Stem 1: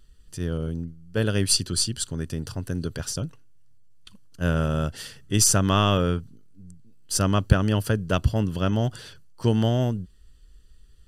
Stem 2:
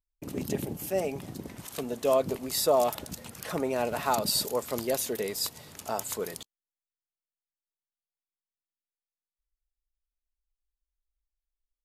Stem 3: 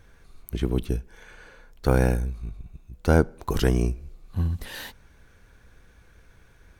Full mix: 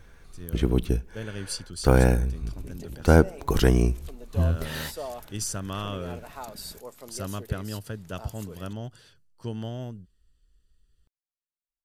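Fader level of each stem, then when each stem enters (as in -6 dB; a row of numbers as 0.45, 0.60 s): -12.5, -12.5, +2.0 dB; 0.00, 2.30, 0.00 s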